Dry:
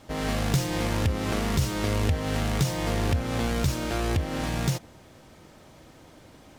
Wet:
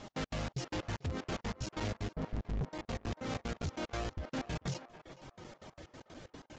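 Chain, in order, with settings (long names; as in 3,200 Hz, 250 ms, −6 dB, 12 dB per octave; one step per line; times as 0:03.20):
reverb reduction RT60 0.66 s
0:02.15–0:02.65: spectral tilt −4 dB per octave
downward compressor 2.5 to 1, threshold −33 dBFS, peak gain reduction 16 dB
flanger 0.41 Hz, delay 4.6 ms, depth 7.7 ms, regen +60%
soft clipping −39 dBFS, distortion −8 dB
gate pattern "x.x.xx.x." 187 BPM −60 dB
feedback echo with a band-pass in the loop 441 ms, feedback 42%, band-pass 960 Hz, level −11 dB
regular buffer underruns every 0.14 s, samples 256, zero, from 0:00.68
level +7 dB
Ogg Vorbis 96 kbit/s 16,000 Hz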